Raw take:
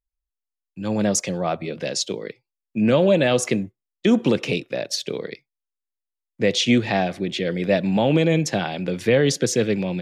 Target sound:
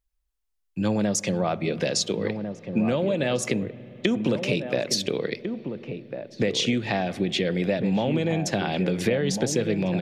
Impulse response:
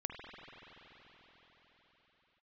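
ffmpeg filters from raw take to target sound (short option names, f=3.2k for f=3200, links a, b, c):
-filter_complex "[0:a]acompressor=threshold=-27dB:ratio=10,asplit=2[a][b];[b]adelay=1399,volume=-7dB,highshelf=f=4k:g=-31.5[c];[a][c]amix=inputs=2:normalize=0,asplit=2[d][e];[1:a]atrim=start_sample=2205,lowshelf=f=250:g=11.5[f];[e][f]afir=irnorm=-1:irlink=0,volume=-18dB[g];[d][g]amix=inputs=2:normalize=0,volume=5dB"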